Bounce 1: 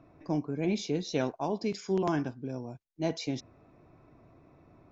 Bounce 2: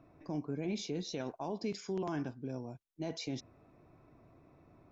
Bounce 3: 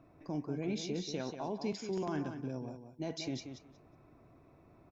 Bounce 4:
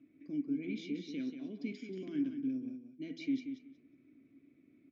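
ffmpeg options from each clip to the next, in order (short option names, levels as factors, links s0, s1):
-af "alimiter=level_in=1.06:limit=0.0631:level=0:latency=1:release=43,volume=0.944,volume=0.668"
-af "aecho=1:1:183|366|549:0.376|0.0677|0.0122"
-filter_complex "[0:a]asplit=3[s0][s1][s2];[s0]bandpass=f=270:t=q:w=8,volume=1[s3];[s1]bandpass=f=2290:t=q:w=8,volume=0.501[s4];[s2]bandpass=f=3010:t=q:w=8,volume=0.355[s5];[s3][s4][s5]amix=inputs=3:normalize=0,bandreject=f=82.79:t=h:w=4,bandreject=f=165.58:t=h:w=4,bandreject=f=248.37:t=h:w=4,bandreject=f=331.16:t=h:w=4,bandreject=f=413.95:t=h:w=4,bandreject=f=496.74:t=h:w=4,bandreject=f=579.53:t=h:w=4,bandreject=f=662.32:t=h:w=4,bandreject=f=745.11:t=h:w=4,bandreject=f=827.9:t=h:w=4,bandreject=f=910.69:t=h:w=4,bandreject=f=993.48:t=h:w=4,bandreject=f=1076.27:t=h:w=4,bandreject=f=1159.06:t=h:w=4,bandreject=f=1241.85:t=h:w=4,bandreject=f=1324.64:t=h:w=4,bandreject=f=1407.43:t=h:w=4,bandreject=f=1490.22:t=h:w=4,bandreject=f=1573.01:t=h:w=4,bandreject=f=1655.8:t=h:w=4,bandreject=f=1738.59:t=h:w=4,bandreject=f=1821.38:t=h:w=4,bandreject=f=1904.17:t=h:w=4,bandreject=f=1986.96:t=h:w=4,bandreject=f=2069.75:t=h:w=4,bandreject=f=2152.54:t=h:w=4,bandreject=f=2235.33:t=h:w=4,bandreject=f=2318.12:t=h:w=4,bandreject=f=2400.91:t=h:w=4,bandreject=f=2483.7:t=h:w=4,bandreject=f=2566.49:t=h:w=4,bandreject=f=2649.28:t=h:w=4,bandreject=f=2732.07:t=h:w=4,bandreject=f=2814.86:t=h:w=4,volume=2.66"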